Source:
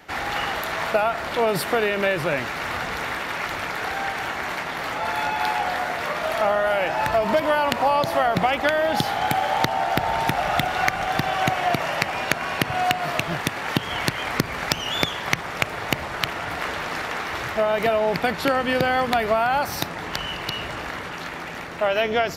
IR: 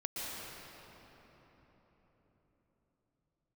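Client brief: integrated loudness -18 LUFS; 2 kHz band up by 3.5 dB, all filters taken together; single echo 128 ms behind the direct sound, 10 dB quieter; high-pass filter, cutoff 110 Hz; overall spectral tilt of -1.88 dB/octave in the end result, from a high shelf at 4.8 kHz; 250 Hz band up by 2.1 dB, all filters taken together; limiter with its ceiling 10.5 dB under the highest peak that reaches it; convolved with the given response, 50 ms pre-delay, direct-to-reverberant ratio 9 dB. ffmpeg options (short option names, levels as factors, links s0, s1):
-filter_complex "[0:a]highpass=110,equalizer=f=250:t=o:g=3,equalizer=f=2000:t=o:g=5.5,highshelf=f=4800:g=-7,alimiter=limit=0.316:level=0:latency=1,aecho=1:1:128:0.316,asplit=2[s0][s1];[1:a]atrim=start_sample=2205,adelay=50[s2];[s1][s2]afir=irnorm=-1:irlink=0,volume=0.251[s3];[s0][s3]amix=inputs=2:normalize=0,volume=1.58"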